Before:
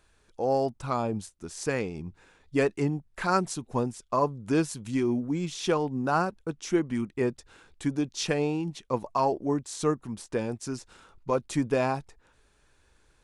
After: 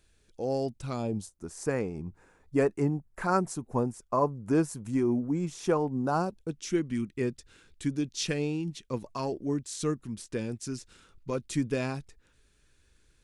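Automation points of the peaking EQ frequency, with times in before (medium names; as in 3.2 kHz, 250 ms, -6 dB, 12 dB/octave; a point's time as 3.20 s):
peaking EQ -12.5 dB 1.4 oct
0.98 s 1 kHz
1.48 s 3.5 kHz
5.90 s 3.5 kHz
6.64 s 830 Hz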